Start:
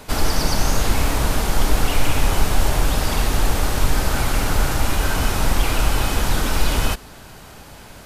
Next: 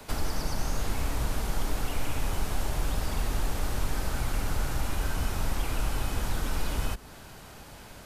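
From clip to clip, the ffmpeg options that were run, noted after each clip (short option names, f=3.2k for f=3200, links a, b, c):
-filter_complex "[0:a]acrossover=split=140|280|2400|5300[a][b][c][d][e];[a]acompressor=threshold=-18dB:ratio=4[f];[b]acompressor=threshold=-38dB:ratio=4[g];[c]acompressor=threshold=-32dB:ratio=4[h];[d]acompressor=threshold=-43dB:ratio=4[i];[e]acompressor=threshold=-38dB:ratio=4[j];[f][g][h][i][j]amix=inputs=5:normalize=0,volume=-6dB"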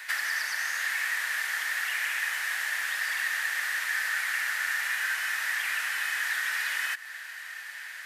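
-af "highpass=f=1.8k:t=q:w=11,volume=2.5dB"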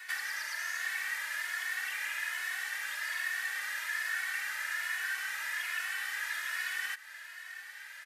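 -filter_complex "[0:a]asplit=2[a][b];[b]adelay=2.3,afreqshift=1.2[c];[a][c]amix=inputs=2:normalize=1,volume=-3dB"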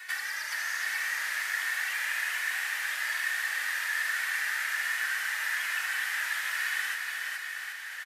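-af "aecho=1:1:420|777|1080|1338|1558:0.631|0.398|0.251|0.158|0.1,volume=2.5dB"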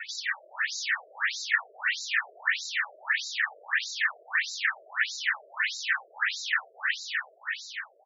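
-af "afftfilt=real='re*between(b*sr/1024,480*pow(5300/480,0.5+0.5*sin(2*PI*1.6*pts/sr))/1.41,480*pow(5300/480,0.5+0.5*sin(2*PI*1.6*pts/sr))*1.41)':imag='im*between(b*sr/1024,480*pow(5300/480,0.5+0.5*sin(2*PI*1.6*pts/sr))/1.41,480*pow(5300/480,0.5+0.5*sin(2*PI*1.6*pts/sr))*1.41)':win_size=1024:overlap=0.75,volume=8.5dB"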